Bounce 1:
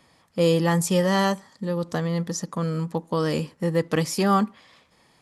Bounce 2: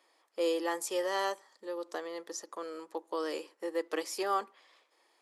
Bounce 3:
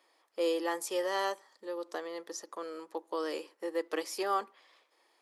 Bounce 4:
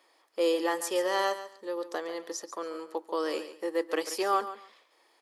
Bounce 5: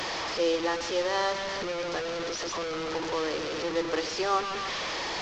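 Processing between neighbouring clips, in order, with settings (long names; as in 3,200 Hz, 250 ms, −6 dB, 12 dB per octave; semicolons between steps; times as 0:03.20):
elliptic high-pass filter 330 Hz, stop band 60 dB; level −8.5 dB
parametric band 7,400 Hz −3 dB 0.39 octaves
repeating echo 140 ms, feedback 19%, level −13 dB; level +4 dB
linear delta modulator 32 kbit/s, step −26.5 dBFS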